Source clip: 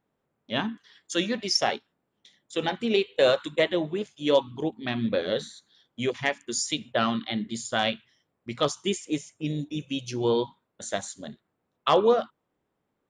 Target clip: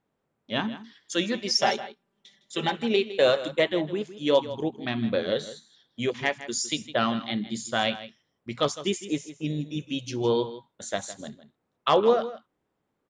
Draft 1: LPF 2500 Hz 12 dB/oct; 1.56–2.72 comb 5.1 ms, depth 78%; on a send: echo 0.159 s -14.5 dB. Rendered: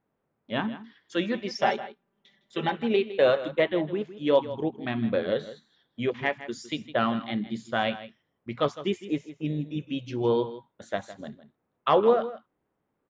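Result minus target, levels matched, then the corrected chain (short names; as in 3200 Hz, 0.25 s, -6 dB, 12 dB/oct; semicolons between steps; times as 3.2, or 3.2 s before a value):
8000 Hz band -16.0 dB
LPF 8800 Hz 12 dB/oct; 1.56–2.72 comb 5.1 ms, depth 78%; on a send: echo 0.159 s -14.5 dB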